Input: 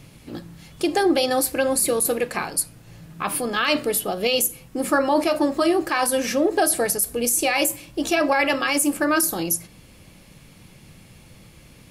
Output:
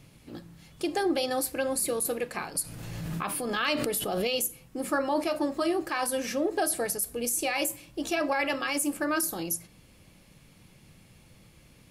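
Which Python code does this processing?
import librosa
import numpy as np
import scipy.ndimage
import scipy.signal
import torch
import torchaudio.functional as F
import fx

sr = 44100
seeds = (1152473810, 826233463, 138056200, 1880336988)

y = fx.pre_swell(x, sr, db_per_s=22.0, at=(2.55, 4.24), fade=0.02)
y = F.gain(torch.from_numpy(y), -8.0).numpy()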